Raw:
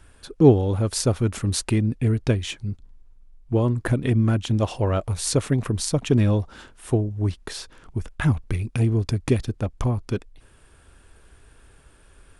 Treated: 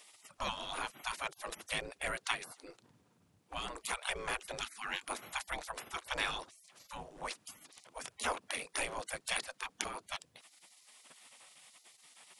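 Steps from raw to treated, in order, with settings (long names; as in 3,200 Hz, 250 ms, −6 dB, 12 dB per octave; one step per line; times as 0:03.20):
gate on every frequency bin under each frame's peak −30 dB weak
level +6.5 dB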